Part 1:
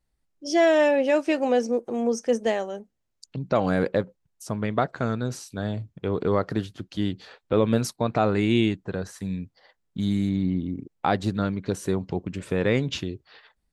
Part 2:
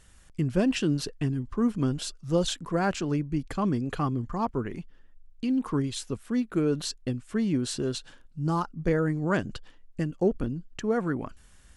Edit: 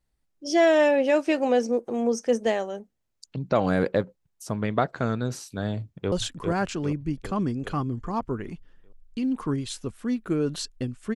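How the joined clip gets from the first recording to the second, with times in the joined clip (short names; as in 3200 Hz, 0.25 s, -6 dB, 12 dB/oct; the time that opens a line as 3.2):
part 1
5.8–6.12 echo throw 0.4 s, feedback 55%, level -4.5 dB
6.12 switch to part 2 from 2.38 s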